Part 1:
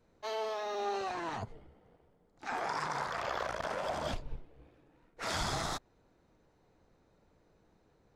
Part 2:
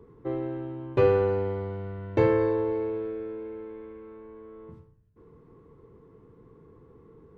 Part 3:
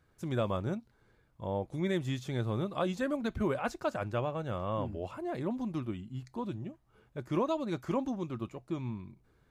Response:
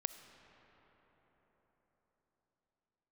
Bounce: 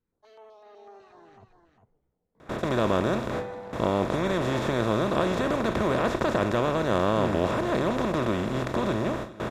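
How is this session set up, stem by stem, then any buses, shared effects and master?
-13.0 dB, 0.00 s, no send, echo send -8 dB, treble shelf 2.7 kHz -10 dB; step-sequenced notch 8 Hz 660–6700 Hz
-7.0 dB, 2.35 s, no send, no echo send, high-pass 160 Hz 24 dB/octave; static phaser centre 1.9 kHz, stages 8
-0.5 dB, 2.40 s, no send, echo send -20 dB, spectral levelling over time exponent 0.2; gate with hold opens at -19 dBFS; Chebyshev shaper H 2 -14 dB, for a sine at -9.5 dBFS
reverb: none
echo: delay 402 ms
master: none

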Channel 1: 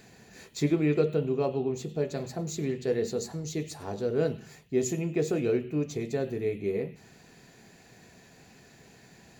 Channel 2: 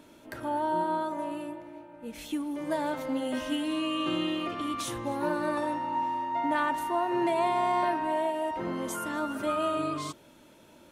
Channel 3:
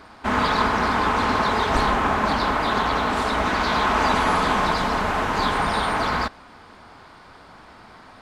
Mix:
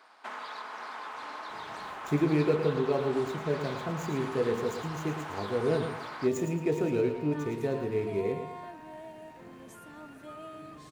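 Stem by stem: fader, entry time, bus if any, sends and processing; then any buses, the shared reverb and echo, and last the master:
-1.0 dB, 1.50 s, no bus, no send, echo send -8 dB, median filter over 9 samples
-15.5 dB, 0.80 s, bus A, no send, no echo send, comb of notches 190 Hz
-10.5 dB, 0.00 s, bus A, no send, no echo send, high-pass 580 Hz 12 dB/octave
bus A: 0.0 dB, compression 12:1, threshold -37 dBFS, peak gain reduction 10.5 dB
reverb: none
echo: feedback delay 111 ms, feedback 34%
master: none

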